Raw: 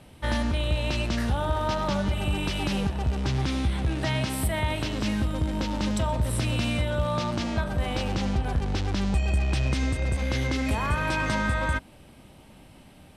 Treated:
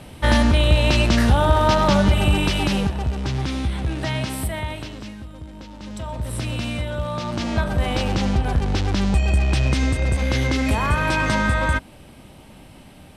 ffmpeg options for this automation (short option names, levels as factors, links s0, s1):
-af "volume=21.1,afade=t=out:st=2.14:d=0.99:silence=0.398107,afade=t=out:st=4.31:d=0.84:silence=0.237137,afade=t=in:st=5.8:d=0.6:silence=0.298538,afade=t=in:st=7.21:d=0.41:silence=0.501187"